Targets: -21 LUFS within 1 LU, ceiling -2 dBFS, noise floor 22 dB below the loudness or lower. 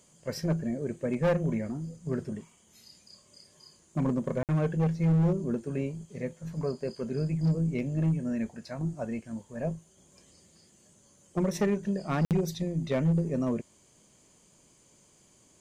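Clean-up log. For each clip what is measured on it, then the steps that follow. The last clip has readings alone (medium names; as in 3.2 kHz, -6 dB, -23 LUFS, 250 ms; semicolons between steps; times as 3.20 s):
clipped samples 1.2%; clipping level -20.5 dBFS; dropouts 2; longest dropout 58 ms; loudness -30.5 LUFS; peak level -20.5 dBFS; loudness target -21.0 LUFS
-> clip repair -20.5 dBFS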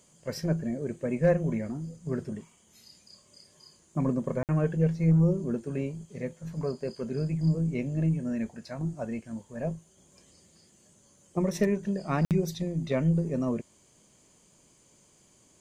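clipped samples 0.0%; dropouts 2; longest dropout 58 ms
-> interpolate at 4.43/12.25 s, 58 ms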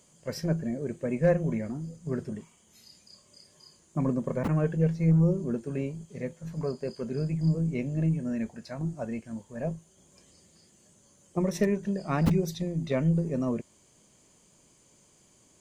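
dropouts 0; loudness -29.5 LUFS; peak level -12.5 dBFS; loudness target -21.0 LUFS
-> trim +8.5 dB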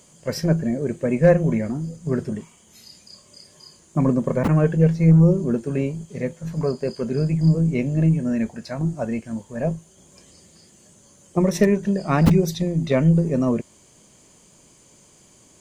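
loudness -21.0 LUFS; peak level -4.0 dBFS; noise floor -54 dBFS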